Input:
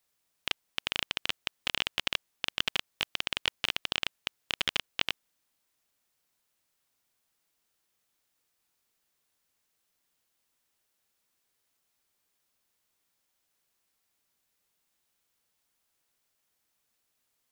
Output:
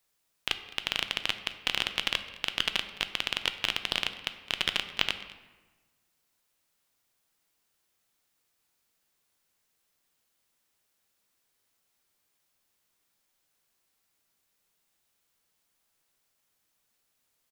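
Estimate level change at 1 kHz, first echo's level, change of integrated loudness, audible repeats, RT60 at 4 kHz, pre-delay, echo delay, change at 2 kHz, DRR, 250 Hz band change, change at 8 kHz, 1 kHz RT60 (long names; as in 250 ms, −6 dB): +2.0 dB, −21.0 dB, +2.0 dB, 1, 0.80 s, 6 ms, 212 ms, +2.0 dB, 8.5 dB, +2.5 dB, +1.5 dB, 1.2 s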